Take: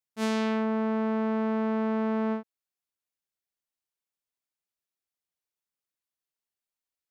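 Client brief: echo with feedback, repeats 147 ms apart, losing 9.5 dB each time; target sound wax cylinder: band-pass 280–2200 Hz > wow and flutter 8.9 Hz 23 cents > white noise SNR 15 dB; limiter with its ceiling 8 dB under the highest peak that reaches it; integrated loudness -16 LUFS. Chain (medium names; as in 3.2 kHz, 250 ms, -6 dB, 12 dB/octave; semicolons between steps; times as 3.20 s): peak limiter -27.5 dBFS; band-pass 280–2200 Hz; feedback delay 147 ms, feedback 33%, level -9.5 dB; wow and flutter 8.9 Hz 23 cents; white noise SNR 15 dB; trim +21 dB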